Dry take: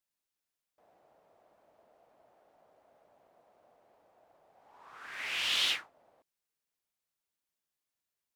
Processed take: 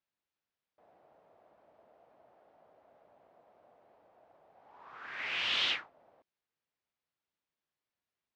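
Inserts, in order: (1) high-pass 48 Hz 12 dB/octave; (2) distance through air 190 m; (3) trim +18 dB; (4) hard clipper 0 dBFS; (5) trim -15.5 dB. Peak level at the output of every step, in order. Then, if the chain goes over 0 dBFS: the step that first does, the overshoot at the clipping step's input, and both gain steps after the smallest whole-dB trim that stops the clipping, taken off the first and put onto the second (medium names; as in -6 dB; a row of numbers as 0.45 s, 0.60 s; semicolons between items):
-16.0 dBFS, -20.5 dBFS, -2.5 dBFS, -2.5 dBFS, -18.0 dBFS; nothing clips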